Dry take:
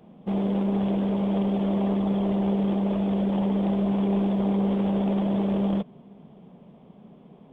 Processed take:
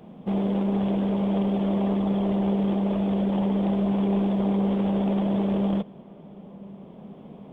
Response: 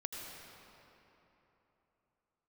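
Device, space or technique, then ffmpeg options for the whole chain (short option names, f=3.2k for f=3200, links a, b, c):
ducked reverb: -filter_complex "[0:a]asplit=3[a][b][c];[1:a]atrim=start_sample=2205[d];[b][d]afir=irnorm=-1:irlink=0[e];[c]apad=whole_len=332005[f];[e][f]sidechaincompress=threshold=-42dB:ratio=10:attack=16:release=995,volume=1.5dB[g];[a][g]amix=inputs=2:normalize=0"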